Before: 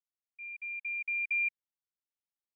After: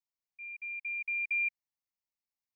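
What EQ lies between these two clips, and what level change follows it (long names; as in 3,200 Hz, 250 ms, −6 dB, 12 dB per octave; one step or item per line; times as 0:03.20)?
phaser with its sweep stopped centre 2,200 Hz, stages 8
0.0 dB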